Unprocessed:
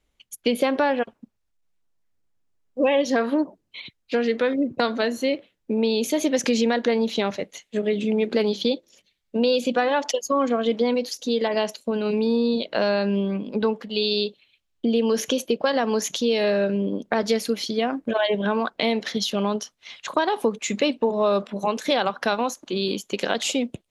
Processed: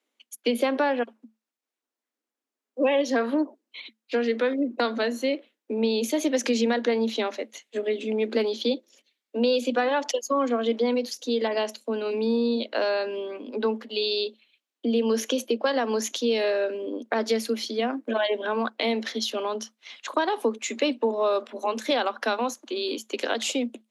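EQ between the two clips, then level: Chebyshev high-pass 220 Hz, order 10; -2.0 dB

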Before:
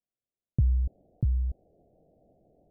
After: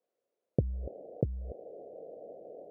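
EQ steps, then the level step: resonant high-pass 490 Hz, resonance Q 3.5; tilt -4 dB/oct; +7.5 dB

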